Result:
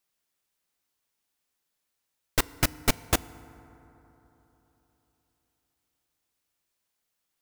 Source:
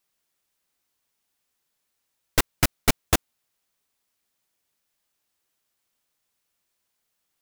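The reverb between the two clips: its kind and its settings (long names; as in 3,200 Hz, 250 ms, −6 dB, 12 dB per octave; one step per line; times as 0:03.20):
feedback delay network reverb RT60 3.8 s, high-frequency decay 0.35×, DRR 18 dB
level −3.5 dB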